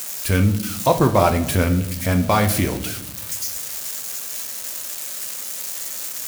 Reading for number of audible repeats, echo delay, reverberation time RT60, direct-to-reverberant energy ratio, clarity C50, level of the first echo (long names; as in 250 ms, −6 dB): no echo audible, no echo audible, 0.85 s, 6.0 dB, 12.0 dB, no echo audible